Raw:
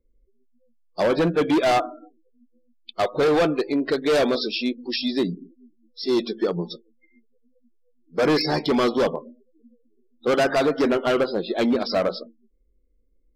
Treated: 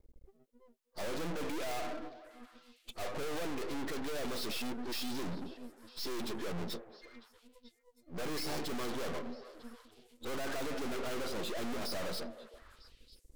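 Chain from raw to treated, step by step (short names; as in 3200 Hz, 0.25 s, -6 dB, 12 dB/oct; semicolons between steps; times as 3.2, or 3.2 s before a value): tube stage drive 43 dB, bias 0.3; half-wave rectifier; delay with a stepping band-pass 0.317 s, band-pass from 530 Hz, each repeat 1.4 oct, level -11 dB; gain +10.5 dB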